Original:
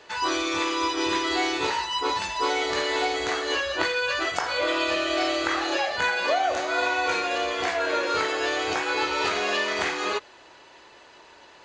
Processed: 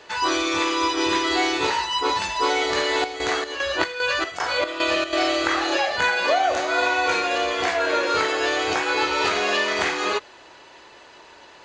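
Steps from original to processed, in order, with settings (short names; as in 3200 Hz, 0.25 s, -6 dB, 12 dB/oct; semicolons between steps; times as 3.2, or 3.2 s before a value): 2.8–5.13 chopper 2.5 Hz, depth 65%, duty 60%; gain +3.5 dB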